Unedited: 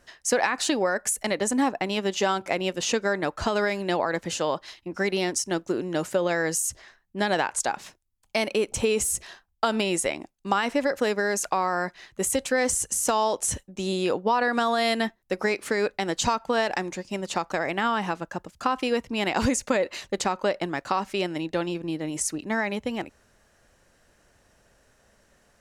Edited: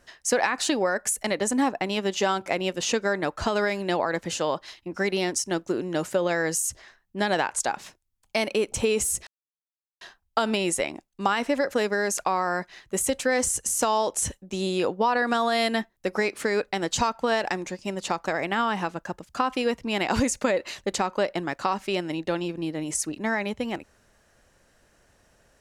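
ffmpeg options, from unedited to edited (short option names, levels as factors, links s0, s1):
-filter_complex "[0:a]asplit=2[s0][s1];[s0]atrim=end=9.27,asetpts=PTS-STARTPTS,afade=t=out:st=9.266:d=0.004:c=hsin,apad=pad_dur=0.74[s2];[s1]atrim=start=9.27,asetpts=PTS-STARTPTS,afade=t=in:d=0.004:c=hsin[s3];[s2][s3]concat=n=2:v=0:a=1"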